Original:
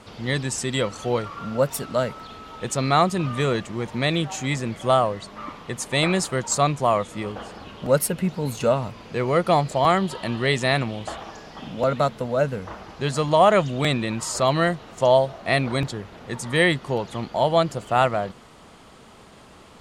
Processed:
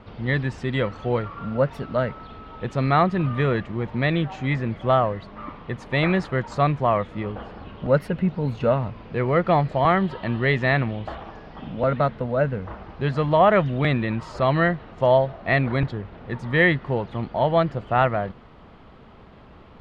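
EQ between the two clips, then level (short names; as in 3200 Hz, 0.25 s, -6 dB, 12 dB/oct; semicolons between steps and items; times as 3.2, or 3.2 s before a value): dynamic EQ 1800 Hz, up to +6 dB, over -39 dBFS, Q 2.4; air absorption 330 m; low shelf 100 Hz +9 dB; 0.0 dB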